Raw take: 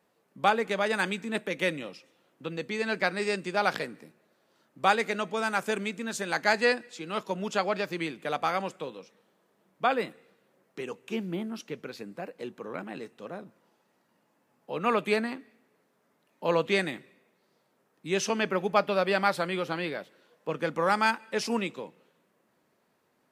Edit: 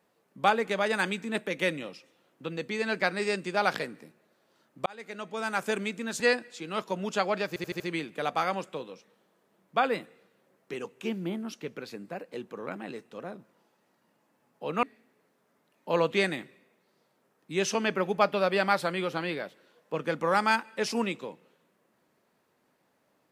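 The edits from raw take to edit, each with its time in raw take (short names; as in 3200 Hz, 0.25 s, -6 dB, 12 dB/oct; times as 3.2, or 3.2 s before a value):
4.86–5.69 fade in
6.2–6.59 cut
7.87 stutter 0.08 s, 5 plays
14.9–15.38 cut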